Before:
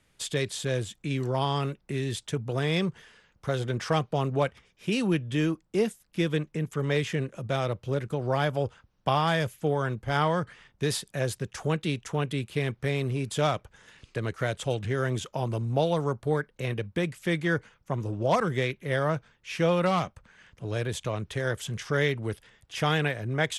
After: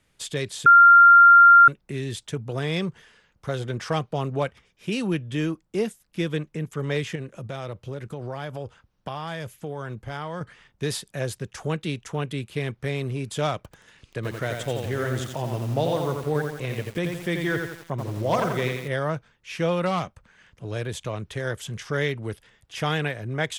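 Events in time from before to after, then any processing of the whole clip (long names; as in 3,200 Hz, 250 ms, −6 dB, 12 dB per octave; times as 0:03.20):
0:00.66–0:01.68: beep over 1,390 Hz −8 dBFS
0:07.15–0:10.41: downward compressor 3 to 1, threshold −30 dBFS
0:13.56–0:18.88: feedback echo at a low word length 86 ms, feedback 55%, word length 7 bits, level −4 dB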